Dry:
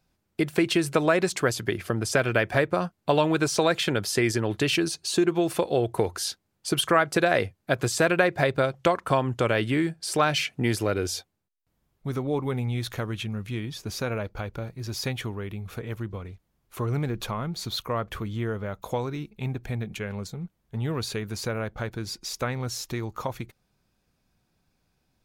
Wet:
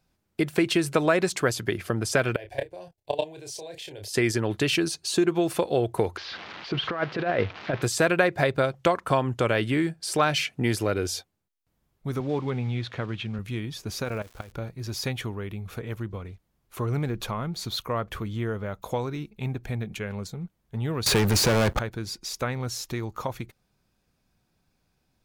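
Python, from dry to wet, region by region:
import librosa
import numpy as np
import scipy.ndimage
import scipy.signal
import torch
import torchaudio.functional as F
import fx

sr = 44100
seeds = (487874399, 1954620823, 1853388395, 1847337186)

y = fx.chain(x, sr, fx.level_steps(step_db=19),
    fx.fixed_phaser(hz=530.0, stages=4),
    fx.doubler(ms=30.0, db=-6.0), at=(2.36, 4.14))
y = fx.chain(y, sr, fx.crossing_spikes(level_db=-15.0),
    fx.gaussian_blur(sigma=3.1),
    fx.over_compress(threshold_db=-24.0, ratio=-0.5), at=(6.17, 7.82))
y = fx.chain(y, sr, fx.block_float(bits=5),
    fx.cheby1_bandpass(low_hz=110.0, high_hz=3300.0, order=2), at=(12.2, 13.39))
y = fx.level_steps(y, sr, step_db=15, at=(14.03, 14.51), fade=0.02)
y = fx.dmg_crackle(y, sr, seeds[0], per_s=360.0, level_db=-41.0, at=(14.03, 14.51), fade=0.02)
y = fx.chain(y, sr, fx.leveller(passes=5),
    fx.band_squash(depth_pct=40), at=(21.06, 21.79))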